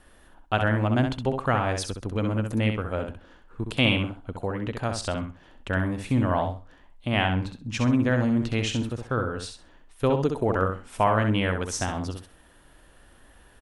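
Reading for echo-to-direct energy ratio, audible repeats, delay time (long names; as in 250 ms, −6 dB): −6.0 dB, 3, 65 ms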